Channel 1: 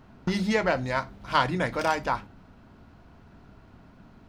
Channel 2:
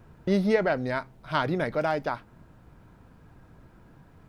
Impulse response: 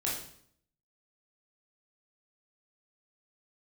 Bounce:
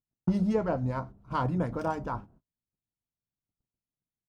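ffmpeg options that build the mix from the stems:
-filter_complex "[0:a]acrossover=split=1200[link_01][link_02];[link_01]aeval=exprs='val(0)*(1-0.5/2+0.5/2*cos(2*PI*6.9*n/s))':channel_layout=same[link_03];[link_02]aeval=exprs='val(0)*(1-0.5/2-0.5/2*cos(2*PI*6.9*n/s))':channel_layout=same[link_04];[link_03][link_04]amix=inputs=2:normalize=0,volume=0.5dB[link_05];[1:a]volume=-1,adelay=2.7,volume=-11.5dB,asplit=2[link_06][link_07];[link_07]apad=whole_len=189098[link_08];[link_05][link_08]sidechaingate=range=-12dB:threshold=-52dB:ratio=16:detection=peak[link_09];[link_09][link_06]amix=inputs=2:normalize=0,highshelf=frequency=2200:gain=-12,agate=range=-37dB:threshold=-55dB:ratio=16:detection=peak,equalizer=frequency=125:width_type=o:width=1:gain=3,equalizer=frequency=2000:width_type=o:width=1:gain=-11,equalizer=frequency=4000:width_type=o:width=1:gain=-7"

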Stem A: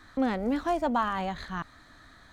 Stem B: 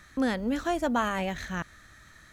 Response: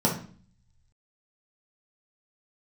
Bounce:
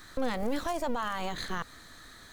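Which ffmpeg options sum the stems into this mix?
-filter_complex "[0:a]crystalizer=i=4:c=0,volume=-1.5dB,asplit=2[link_01][link_02];[1:a]lowpass=1200,equalizer=frequency=250:width=2:gain=13.5,aeval=exprs='abs(val(0))':channel_layout=same,volume=-2.5dB[link_03];[link_02]apad=whole_len=102517[link_04];[link_03][link_04]sidechaincompress=threshold=-32dB:ratio=8:attack=16:release=177[link_05];[link_01][link_05]amix=inputs=2:normalize=0,alimiter=limit=-23dB:level=0:latency=1:release=87"

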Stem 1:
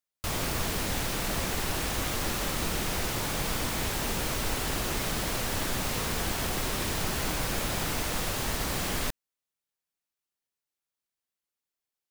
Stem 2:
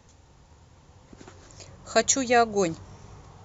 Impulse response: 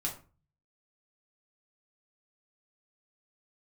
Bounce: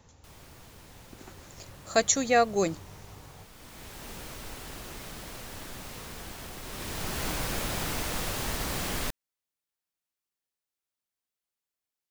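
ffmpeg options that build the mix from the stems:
-filter_complex "[0:a]volume=-1.5dB,afade=type=in:start_time=3.52:duration=0.62:silence=0.298538,afade=type=in:start_time=6.62:duration=0.65:silence=0.316228[link_01];[1:a]volume=-2dB[link_02];[link_01][link_02]amix=inputs=2:normalize=0"

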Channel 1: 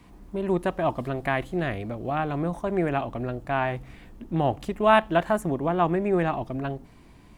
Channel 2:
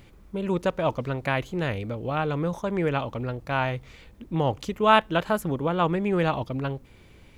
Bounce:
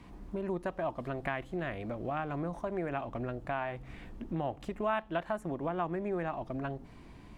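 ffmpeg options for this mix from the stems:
ffmpeg -i stem1.wav -i stem2.wav -filter_complex "[0:a]volume=0dB[link_01];[1:a]acrossover=split=860[link_02][link_03];[link_02]aeval=exprs='val(0)*(1-0.7/2+0.7/2*cos(2*PI*1.1*n/s))':channel_layout=same[link_04];[link_03]aeval=exprs='val(0)*(1-0.7/2-0.7/2*cos(2*PI*1.1*n/s))':channel_layout=same[link_05];[link_04][link_05]amix=inputs=2:normalize=0,aeval=exprs='sgn(val(0))*max(abs(val(0))-0.00316,0)':channel_layout=same,volume=-1,volume=-8dB[link_06];[link_01][link_06]amix=inputs=2:normalize=0,highshelf=frequency=8100:gain=-11,acompressor=threshold=-36dB:ratio=2.5" out.wav

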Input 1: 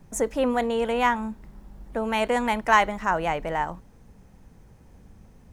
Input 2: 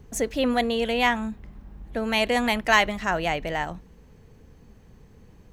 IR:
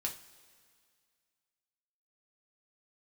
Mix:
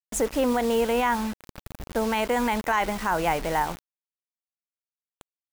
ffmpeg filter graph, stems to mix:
-filter_complex "[0:a]volume=2dB,asplit=2[link_01][link_02];[1:a]highpass=frequency=310:poles=1,lowpass=1300,volume=-1,adelay=1.1,volume=-11dB[link_03];[link_02]apad=whole_len=243809[link_04];[link_03][link_04]sidechaingate=range=-33dB:threshold=-41dB:ratio=16:detection=peak[link_05];[link_01][link_05]amix=inputs=2:normalize=0,acrusher=bits=5:mix=0:aa=0.000001,alimiter=limit=-14dB:level=0:latency=1:release=52"

